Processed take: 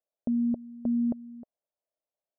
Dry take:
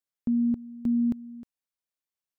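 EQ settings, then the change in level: resonant low-pass 620 Hz, resonance Q 4.9; bass shelf 430 Hz -10.5 dB; +4.5 dB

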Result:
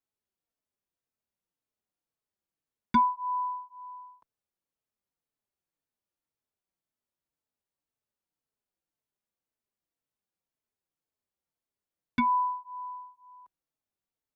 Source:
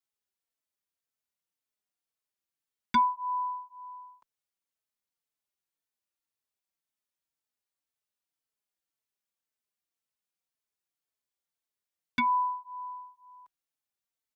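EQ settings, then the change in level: tilt shelf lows +6.5 dB, about 1.1 kHz; 0.0 dB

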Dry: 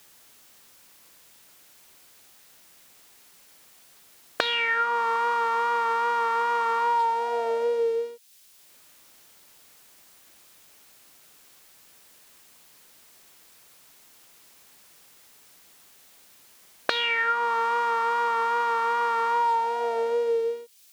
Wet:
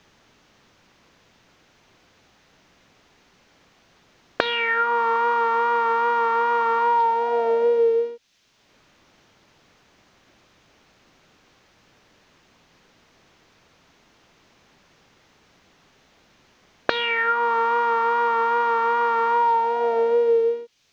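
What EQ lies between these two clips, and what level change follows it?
distance through air 240 m; bass shelf 360 Hz +7.5 dB; peaking EQ 6.3 kHz +6.5 dB 0.44 oct; +4.0 dB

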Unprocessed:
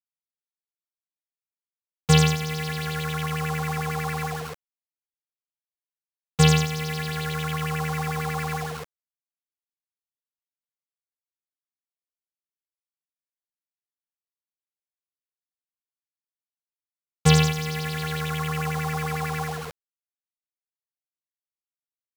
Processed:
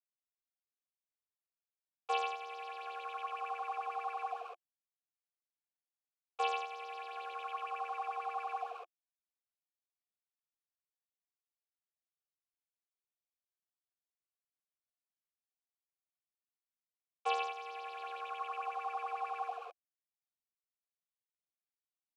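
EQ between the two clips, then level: vowel filter a; Chebyshev high-pass 340 Hz, order 6; 0.0 dB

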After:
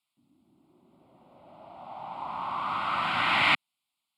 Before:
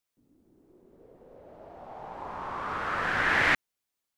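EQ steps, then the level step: band-pass 150–6200 Hz; treble shelf 4.2 kHz +12 dB; static phaser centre 1.7 kHz, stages 6; +4.0 dB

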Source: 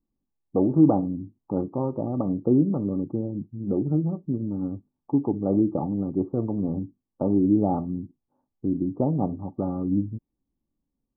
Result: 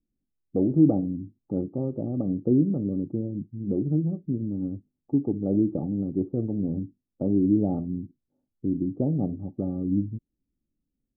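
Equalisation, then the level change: boxcar filter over 44 samples; 0.0 dB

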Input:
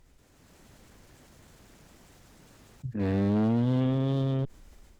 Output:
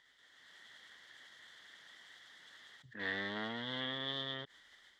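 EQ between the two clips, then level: two resonant band-passes 2.5 kHz, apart 0.8 oct; +12.0 dB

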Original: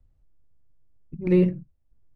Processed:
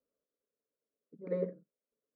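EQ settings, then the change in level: resonant high-pass 410 Hz, resonance Q 4.9; distance through air 320 m; static phaser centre 540 Hz, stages 8; -6.5 dB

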